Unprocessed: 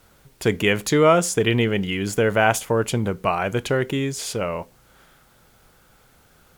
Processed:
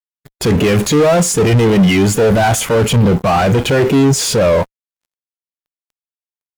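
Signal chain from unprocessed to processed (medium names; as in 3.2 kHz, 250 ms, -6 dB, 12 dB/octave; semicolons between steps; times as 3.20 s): waveshaping leveller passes 2; fuzz box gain 41 dB, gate -48 dBFS; spectral contrast expander 1.5:1; trim +5 dB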